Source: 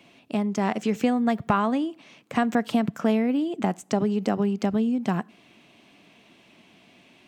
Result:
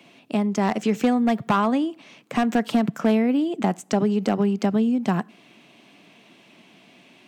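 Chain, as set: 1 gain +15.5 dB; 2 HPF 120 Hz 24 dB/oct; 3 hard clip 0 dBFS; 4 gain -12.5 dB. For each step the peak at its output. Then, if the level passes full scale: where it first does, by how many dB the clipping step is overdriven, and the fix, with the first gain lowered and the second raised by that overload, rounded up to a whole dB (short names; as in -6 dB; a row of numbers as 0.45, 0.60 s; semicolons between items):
+7.5, +8.0, 0.0, -12.5 dBFS; step 1, 8.0 dB; step 1 +7.5 dB, step 4 -4.5 dB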